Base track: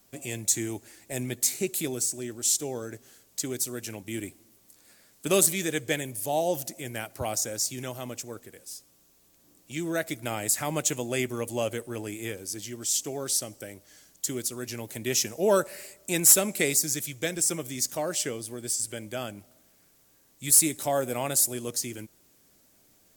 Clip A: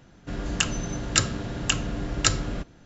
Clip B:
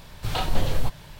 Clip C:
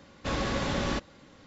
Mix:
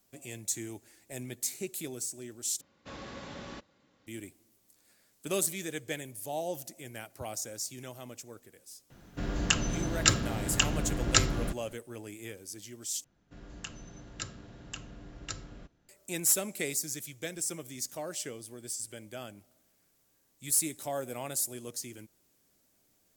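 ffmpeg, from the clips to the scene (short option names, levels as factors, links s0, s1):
-filter_complex "[1:a]asplit=2[s0][s1];[0:a]volume=0.376[s2];[3:a]highpass=f=99:p=1[s3];[s2]asplit=3[s4][s5][s6];[s4]atrim=end=2.614[s7];[s3]atrim=end=1.46,asetpts=PTS-STARTPTS,volume=0.211[s8];[s5]atrim=start=4.066:end=13.044[s9];[s1]atrim=end=2.85,asetpts=PTS-STARTPTS,volume=0.126[s10];[s6]atrim=start=15.886[s11];[s0]atrim=end=2.85,asetpts=PTS-STARTPTS,volume=0.794,afade=t=in:d=0.004:c=hsin,afade=t=out:st=2.846:d=0.004:c=hsin,adelay=392490S[s12];[s7][s8]acrossfade=d=0.004:c1=hsin:c2=hsin[s13];[s13][s9]acrossfade=d=0.004:c1=hsin:c2=hsin[s14];[s14][s10]acrossfade=d=0.004:c1=hsin:c2=hsin[s15];[s15][s11]acrossfade=d=0.004:c1=hsin:c2=hsin[s16];[s16][s12]amix=inputs=2:normalize=0"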